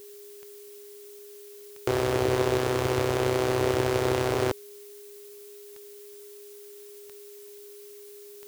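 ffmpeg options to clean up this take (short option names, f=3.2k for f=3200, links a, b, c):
-af "adeclick=t=4,bandreject=f=410:w=30,afftdn=nr=28:nf=-46"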